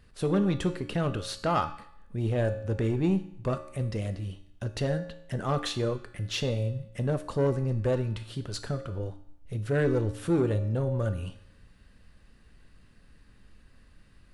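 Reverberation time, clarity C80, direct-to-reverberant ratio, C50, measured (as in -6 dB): 0.75 s, 15.0 dB, 8.0 dB, 12.0 dB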